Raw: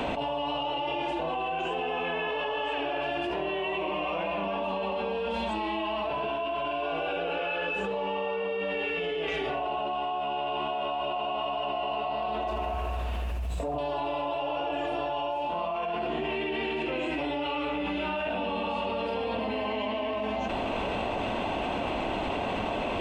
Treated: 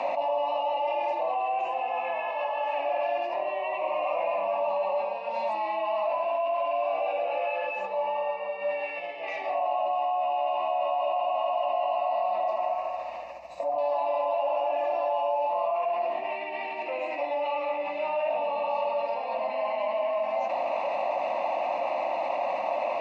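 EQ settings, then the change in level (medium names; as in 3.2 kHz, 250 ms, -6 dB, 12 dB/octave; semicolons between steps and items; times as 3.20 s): resonant high-pass 540 Hz, resonance Q 4.9; distance through air 62 m; static phaser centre 2.2 kHz, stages 8; 0.0 dB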